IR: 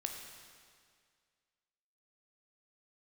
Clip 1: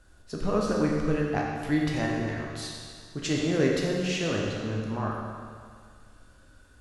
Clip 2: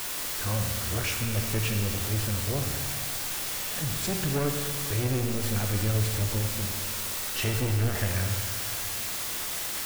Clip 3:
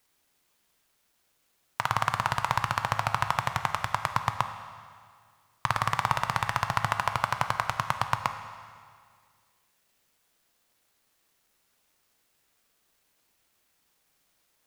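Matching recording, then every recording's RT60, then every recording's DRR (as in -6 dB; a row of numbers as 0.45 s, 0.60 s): 2; 2.0 s, 2.0 s, 2.0 s; -2.5 dB, 2.5 dB, 7.5 dB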